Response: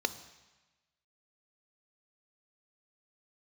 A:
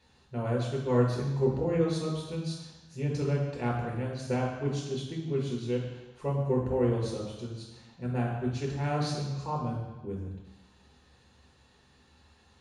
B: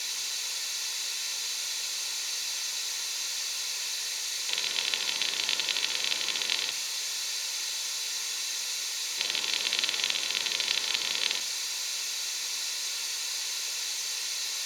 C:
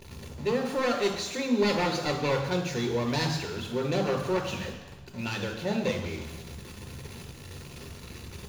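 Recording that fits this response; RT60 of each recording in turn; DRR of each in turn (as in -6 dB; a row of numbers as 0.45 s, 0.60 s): B; 1.1 s, 1.1 s, 1.1 s; -3.0 dB, 11.0 dB, 2.0 dB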